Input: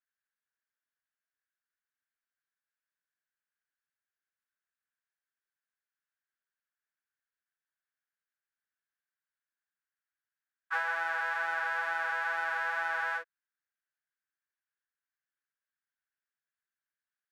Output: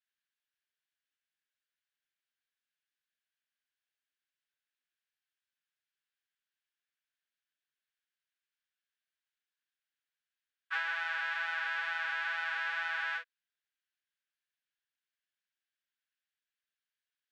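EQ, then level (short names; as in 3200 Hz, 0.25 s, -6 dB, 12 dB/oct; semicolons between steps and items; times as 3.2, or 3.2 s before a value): band-pass 3100 Hz, Q 1.8; +7.0 dB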